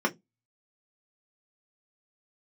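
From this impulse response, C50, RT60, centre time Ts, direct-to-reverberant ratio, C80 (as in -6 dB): 23.5 dB, 0.15 s, 9 ms, -0.5 dB, 34.0 dB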